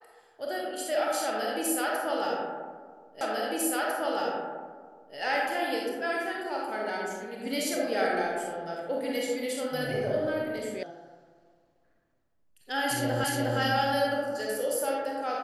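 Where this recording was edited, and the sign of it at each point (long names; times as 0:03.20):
0:03.21: the same again, the last 1.95 s
0:10.83: cut off before it has died away
0:13.24: the same again, the last 0.36 s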